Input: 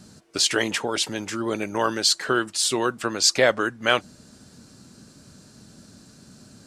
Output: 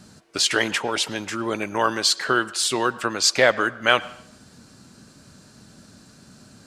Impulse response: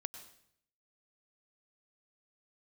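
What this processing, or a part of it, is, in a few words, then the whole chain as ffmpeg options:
filtered reverb send: -filter_complex "[0:a]asplit=2[a][b];[b]highpass=570,lowpass=3.8k[c];[1:a]atrim=start_sample=2205[d];[c][d]afir=irnorm=-1:irlink=0,volume=-3.5dB[e];[a][e]amix=inputs=2:normalize=0"

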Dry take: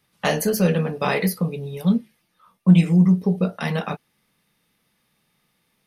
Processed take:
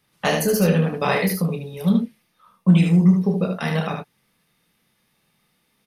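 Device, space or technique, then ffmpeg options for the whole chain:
slapback doubling: -filter_complex "[0:a]asplit=3[a][b][c];[b]adelay=30,volume=-8.5dB[d];[c]adelay=75,volume=-5dB[e];[a][d][e]amix=inputs=3:normalize=0"

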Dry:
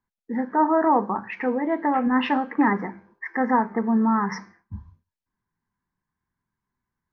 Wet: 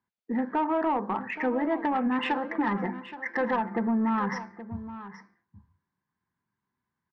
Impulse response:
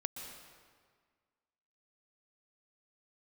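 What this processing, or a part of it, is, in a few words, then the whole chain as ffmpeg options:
AM radio: -filter_complex "[0:a]asettb=1/sr,asplit=3[a][b][c];[a]atrim=end=2.184[d];[b]atrim=start=2.18:end=3.87,asetpts=PTS-STARTPTS,afade=t=in:d=0.004:c=qsin,afade=t=out:st=1.686:d=0.004:c=qsin,aecho=1:1:5.8:0.6,atrim=end_sample=74529[e];[c]atrim=start=3.866[f];[d][e]acrossfade=d=0.004:c1=hsin:c2=qsin[g];[g][f]acrossfade=d=0.004:c1=qsin:c2=hsin,highpass=100,lowpass=4.5k,acompressor=threshold=-21dB:ratio=10,asoftclip=type=tanh:threshold=-18.5dB,aecho=1:1:823:0.2"

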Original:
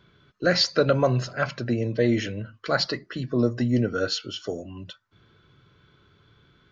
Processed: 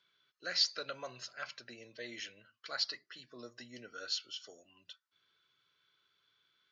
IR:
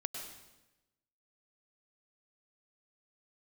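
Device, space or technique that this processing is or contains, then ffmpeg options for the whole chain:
piezo pickup straight into a mixer: -af "lowpass=5.2k,aderivative,volume=-1.5dB"

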